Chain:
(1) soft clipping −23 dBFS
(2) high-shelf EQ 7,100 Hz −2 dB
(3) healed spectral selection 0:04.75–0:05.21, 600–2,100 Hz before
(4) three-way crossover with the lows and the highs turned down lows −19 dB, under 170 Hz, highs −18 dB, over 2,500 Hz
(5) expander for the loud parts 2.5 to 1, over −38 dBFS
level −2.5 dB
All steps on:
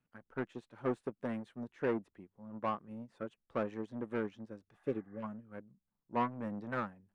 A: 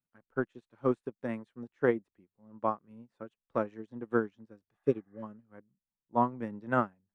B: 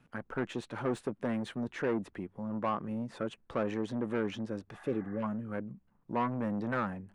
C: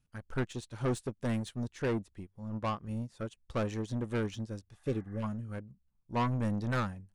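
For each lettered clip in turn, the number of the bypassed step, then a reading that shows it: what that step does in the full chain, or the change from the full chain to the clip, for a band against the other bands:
1, distortion level −7 dB
5, 4 kHz band +5.5 dB
4, 125 Hz band +10.0 dB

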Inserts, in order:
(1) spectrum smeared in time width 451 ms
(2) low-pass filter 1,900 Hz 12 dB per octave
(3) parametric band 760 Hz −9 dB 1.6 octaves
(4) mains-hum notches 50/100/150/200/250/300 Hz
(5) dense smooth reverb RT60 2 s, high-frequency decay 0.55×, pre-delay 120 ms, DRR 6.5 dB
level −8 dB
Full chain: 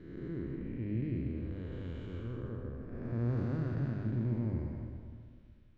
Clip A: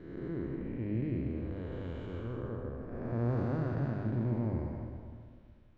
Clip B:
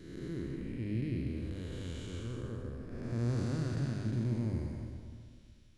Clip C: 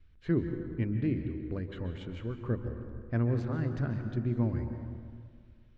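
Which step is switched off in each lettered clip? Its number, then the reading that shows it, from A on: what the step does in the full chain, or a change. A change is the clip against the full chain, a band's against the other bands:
3, 1 kHz band +5.0 dB
2, 2 kHz band +2.5 dB
1, 125 Hz band −2.5 dB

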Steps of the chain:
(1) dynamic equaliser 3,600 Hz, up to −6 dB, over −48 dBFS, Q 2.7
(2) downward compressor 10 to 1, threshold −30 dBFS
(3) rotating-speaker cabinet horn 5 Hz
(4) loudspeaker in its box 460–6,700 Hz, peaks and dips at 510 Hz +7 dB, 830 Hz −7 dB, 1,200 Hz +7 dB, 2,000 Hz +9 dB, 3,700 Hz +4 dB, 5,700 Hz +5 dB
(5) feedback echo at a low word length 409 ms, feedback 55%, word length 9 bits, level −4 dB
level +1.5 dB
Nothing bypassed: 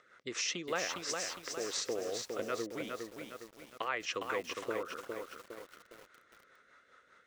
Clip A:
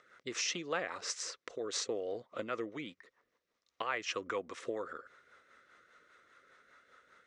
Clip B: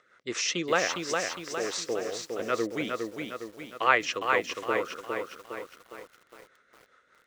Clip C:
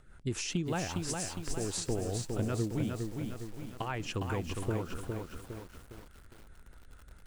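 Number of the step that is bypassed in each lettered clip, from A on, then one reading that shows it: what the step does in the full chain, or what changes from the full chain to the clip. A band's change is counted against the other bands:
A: 5, change in momentary loudness spread −6 LU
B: 2, average gain reduction 3.0 dB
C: 4, 125 Hz band +22.5 dB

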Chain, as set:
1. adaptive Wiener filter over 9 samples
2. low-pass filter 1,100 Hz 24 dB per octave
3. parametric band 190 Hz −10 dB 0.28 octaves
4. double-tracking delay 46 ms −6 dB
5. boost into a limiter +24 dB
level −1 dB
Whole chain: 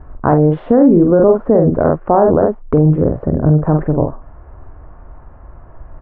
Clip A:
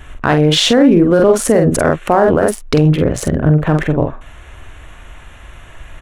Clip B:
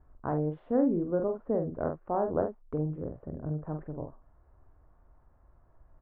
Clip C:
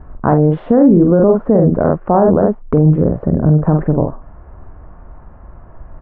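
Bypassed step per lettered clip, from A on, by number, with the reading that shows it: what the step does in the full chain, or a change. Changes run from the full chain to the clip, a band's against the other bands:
2, 2 kHz band +12.5 dB
5, change in crest factor +7.5 dB
3, 125 Hz band +2.5 dB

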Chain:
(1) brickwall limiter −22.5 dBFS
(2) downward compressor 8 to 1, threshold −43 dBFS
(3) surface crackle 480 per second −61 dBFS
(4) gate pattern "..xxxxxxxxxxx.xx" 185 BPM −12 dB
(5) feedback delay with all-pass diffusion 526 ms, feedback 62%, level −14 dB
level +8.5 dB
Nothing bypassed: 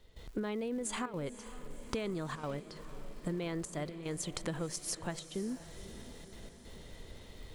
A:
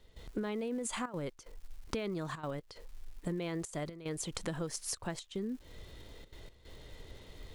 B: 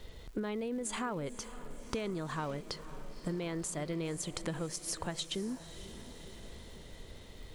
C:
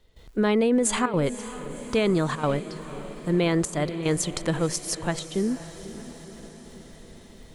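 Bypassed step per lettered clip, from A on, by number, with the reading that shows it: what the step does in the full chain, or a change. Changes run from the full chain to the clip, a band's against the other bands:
5, echo-to-direct ratio −12.0 dB to none audible
4, 4 kHz band +2.5 dB
2, average gain reduction 7.0 dB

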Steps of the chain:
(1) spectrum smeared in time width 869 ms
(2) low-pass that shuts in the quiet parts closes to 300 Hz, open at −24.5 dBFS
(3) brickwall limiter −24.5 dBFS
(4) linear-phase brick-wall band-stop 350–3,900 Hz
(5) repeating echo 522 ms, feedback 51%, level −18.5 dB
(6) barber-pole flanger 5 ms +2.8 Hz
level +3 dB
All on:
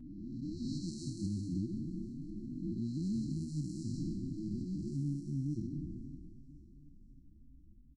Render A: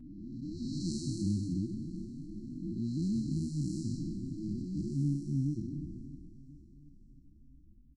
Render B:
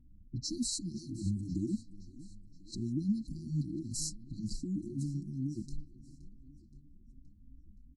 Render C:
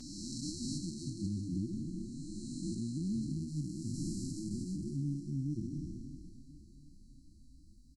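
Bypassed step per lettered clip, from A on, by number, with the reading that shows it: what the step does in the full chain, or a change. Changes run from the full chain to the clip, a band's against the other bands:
3, average gain reduction 1.5 dB
1, 8 kHz band +13.5 dB
2, 8 kHz band +9.0 dB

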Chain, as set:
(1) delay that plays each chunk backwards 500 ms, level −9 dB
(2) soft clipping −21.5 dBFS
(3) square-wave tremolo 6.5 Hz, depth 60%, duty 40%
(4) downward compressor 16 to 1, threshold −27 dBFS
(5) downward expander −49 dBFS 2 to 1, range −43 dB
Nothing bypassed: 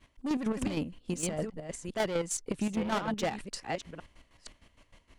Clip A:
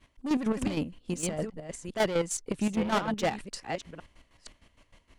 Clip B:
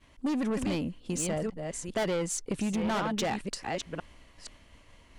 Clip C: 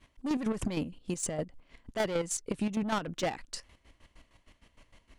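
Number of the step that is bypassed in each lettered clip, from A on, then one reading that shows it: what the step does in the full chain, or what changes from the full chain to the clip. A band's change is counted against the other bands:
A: 4, change in crest factor −1.5 dB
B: 3, change in momentary loudness spread −6 LU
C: 1, change in momentary loudness spread −8 LU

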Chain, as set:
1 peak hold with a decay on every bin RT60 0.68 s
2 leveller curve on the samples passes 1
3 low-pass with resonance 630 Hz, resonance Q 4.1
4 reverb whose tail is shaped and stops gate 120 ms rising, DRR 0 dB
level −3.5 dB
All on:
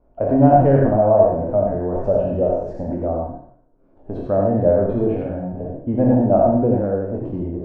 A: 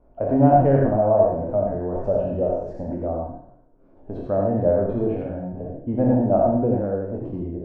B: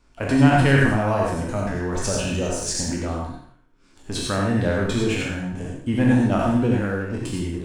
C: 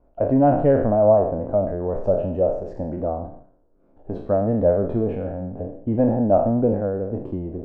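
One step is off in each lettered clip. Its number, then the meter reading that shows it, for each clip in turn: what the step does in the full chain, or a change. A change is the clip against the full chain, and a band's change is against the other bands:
2, change in integrated loudness −3.5 LU
3, 500 Hz band −7.5 dB
4, change in crest factor −2.0 dB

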